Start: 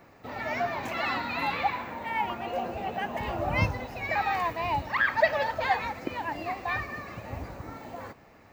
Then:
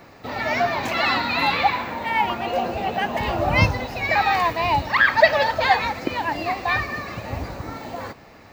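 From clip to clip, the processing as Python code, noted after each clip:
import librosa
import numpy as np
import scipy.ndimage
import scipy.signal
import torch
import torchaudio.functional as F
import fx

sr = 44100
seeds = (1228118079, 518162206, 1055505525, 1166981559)

y = fx.peak_eq(x, sr, hz=4300.0, db=6.0, octaves=0.93)
y = y * librosa.db_to_amplitude(8.0)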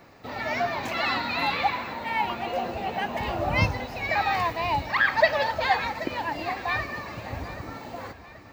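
y = fx.echo_feedback(x, sr, ms=780, feedback_pct=46, wet_db=-16.0)
y = y * librosa.db_to_amplitude(-5.5)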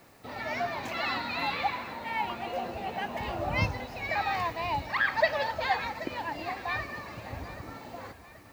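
y = fx.quant_dither(x, sr, seeds[0], bits=10, dither='triangular')
y = y * librosa.db_to_amplitude(-5.0)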